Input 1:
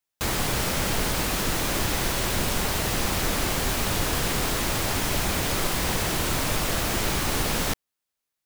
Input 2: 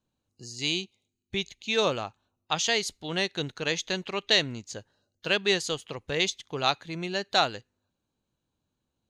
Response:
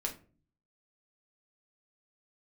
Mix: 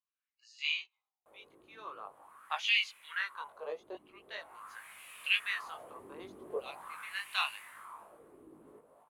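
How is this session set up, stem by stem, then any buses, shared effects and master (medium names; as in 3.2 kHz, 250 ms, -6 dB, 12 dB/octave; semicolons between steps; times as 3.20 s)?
4.18 s -18 dB -> 4.81 s -8 dB -> 7.38 s -8 dB -> 8.07 s -18.5 dB, 1.05 s, no send, echo send -7 dB, resonant high shelf 7.5 kHz +13.5 dB, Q 3; auto duck -6 dB, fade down 1.85 s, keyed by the second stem
+2.0 dB, 0.00 s, no send, no echo send, peaking EQ 1.8 kHz -4 dB 0.22 oct; LFO high-pass saw down 0.76 Hz 570–2800 Hz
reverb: none
echo: feedback delay 238 ms, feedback 51%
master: peaking EQ 1.1 kHz +9.5 dB 0.51 oct; wah-wah 0.44 Hz 330–2600 Hz, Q 4; chorus voices 2, 0.23 Hz, delay 20 ms, depth 1.2 ms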